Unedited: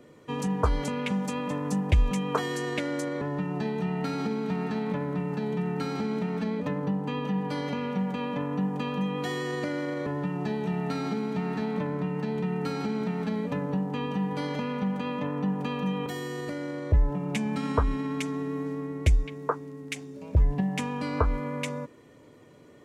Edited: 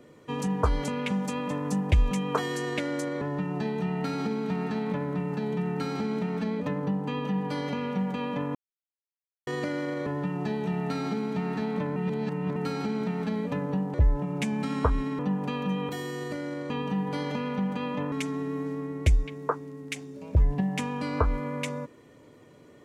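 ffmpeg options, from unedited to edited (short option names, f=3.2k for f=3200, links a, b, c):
-filter_complex "[0:a]asplit=9[a][b][c][d][e][f][g][h][i];[a]atrim=end=8.55,asetpts=PTS-STARTPTS,afade=t=out:st=8.546:d=0.004:c=hsin[j];[b]atrim=start=8.55:end=9.47,asetpts=PTS-STARTPTS,volume=0[k];[c]atrim=start=9.47:end=11.962,asetpts=PTS-STARTPTS,afade=t=in:d=0.004:c=hsin[l];[d]atrim=start=11.958:end=12.562,asetpts=PTS-STARTPTS,areverse[m];[e]atrim=start=12.558:end=13.942[n];[f]atrim=start=16.868:end=18.122[o];[g]atrim=start=15.358:end=16.872[p];[h]atrim=start=13.938:end=15.362[q];[i]atrim=start=18.118[r];[j][k][l]concat=n=3:v=0:a=1[s];[s][m]acrossfade=d=0.004:c1=hsin:c2=hsin[t];[t][n]acrossfade=d=0.004:c1=hsin:c2=hsin[u];[u][o]acrossfade=d=0.004:c1=hsin:c2=hsin[v];[v][p]acrossfade=d=0.004:c1=hsin:c2=hsin[w];[w][q]acrossfade=d=0.004:c1=hsin:c2=hsin[x];[x][r]acrossfade=d=0.004:c1=hsin:c2=hsin"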